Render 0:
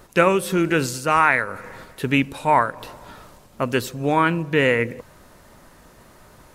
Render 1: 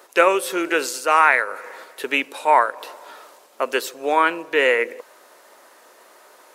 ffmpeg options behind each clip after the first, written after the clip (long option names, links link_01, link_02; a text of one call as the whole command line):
ffmpeg -i in.wav -af "highpass=frequency=390:width=0.5412,highpass=frequency=390:width=1.3066,volume=2dB" out.wav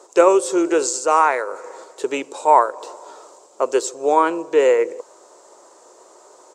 ffmpeg -i in.wav -af "firequalizer=gain_entry='entry(120,0);entry(230,-11);entry(350,1);entry(620,-4);entry(1000,-4);entry(1700,-17);entry(2600,-16);entry(7500,4);entry(11000,-25)':delay=0.05:min_phase=1,volume=6.5dB" out.wav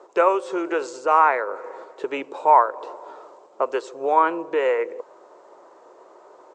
ffmpeg -i in.wav -filter_complex "[0:a]lowpass=2400,acrossover=split=610[link_01][link_02];[link_01]acompressor=threshold=-27dB:ratio=6[link_03];[link_03][link_02]amix=inputs=2:normalize=0" out.wav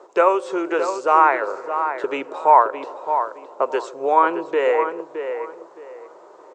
ffmpeg -i in.wav -filter_complex "[0:a]asplit=2[link_01][link_02];[link_02]adelay=617,lowpass=frequency=2400:poles=1,volume=-8dB,asplit=2[link_03][link_04];[link_04]adelay=617,lowpass=frequency=2400:poles=1,volume=0.25,asplit=2[link_05][link_06];[link_06]adelay=617,lowpass=frequency=2400:poles=1,volume=0.25[link_07];[link_01][link_03][link_05][link_07]amix=inputs=4:normalize=0,volume=2dB" out.wav